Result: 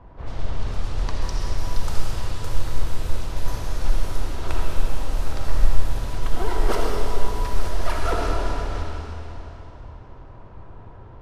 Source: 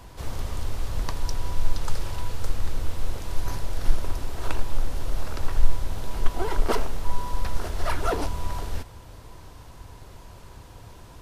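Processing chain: level-controlled noise filter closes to 1.2 kHz, open at -16 dBFS; algorithmic reverb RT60 3.3 s, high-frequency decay 0.95×, pre-delay 25 ms, DRR -2 dB; trim -1 dB

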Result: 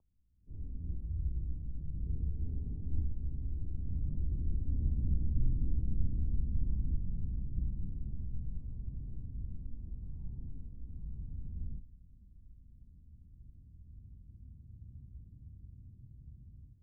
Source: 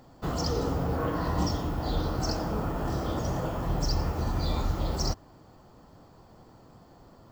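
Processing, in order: Doppler pass-by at 2.40 s, 32 m/s, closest 19 m; low-pass sweep 200 Hz -> 430 Hz, 4.77–6.49 s; formant shift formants -5 st; in parallel at 0 dB: compression, threshold -42 dBFS, peak gain reduction 17.5 dB; on the sum: mistuned SSB -160 Hz 280–2500 Hz; wide varispeed 0.435×; on a send at -16 dB: reverberation RT60 0.80 s, pre-delay 9 ms; on the sum: level rider gain up to 15 dB; trim +1.5 dB

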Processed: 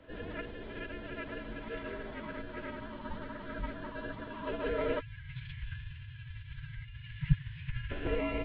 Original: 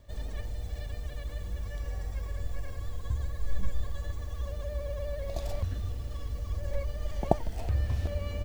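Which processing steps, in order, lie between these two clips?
mistuned SSB -120 Hz 150–3600 Hz; spectral selection erased 5.00–7.91 s, 250–1500 Hz; formant-preserving pitch shift -8.5 st; trim +9 dB

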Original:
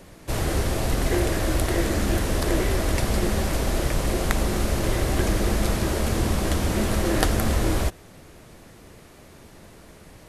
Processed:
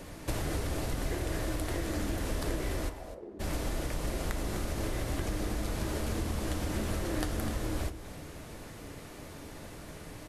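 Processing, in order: compression 12:1, threshold -31 dBFS, peak gain reduction 16 dB; 2.88–3.39 s: band-pass filter 970 Hz -> 300 Hz, Q 4.1; delay 251 ms -13 dB; on a send at -10 dB: reverberation RT60 0.40 s, pre-delay 3 ms; on the sum: trim +1 dB

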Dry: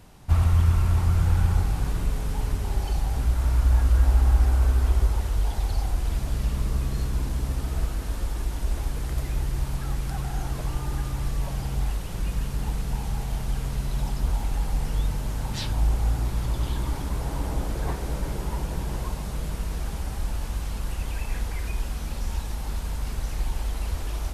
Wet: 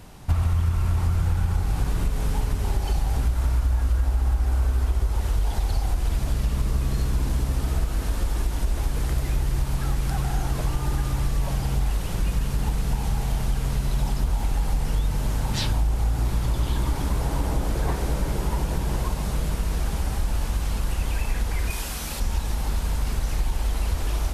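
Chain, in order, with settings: 21.70–22.20 s: tilt EQ +2 dB/octave; compression 6:1, threshold -24 dBFS, peak gain reduction 10.5 dB; trim +5.5 dB

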